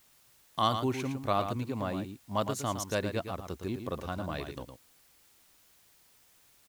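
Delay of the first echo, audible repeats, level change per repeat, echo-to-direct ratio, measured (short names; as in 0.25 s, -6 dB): 0.112 s, 1, no steady repeat, -8.0 dB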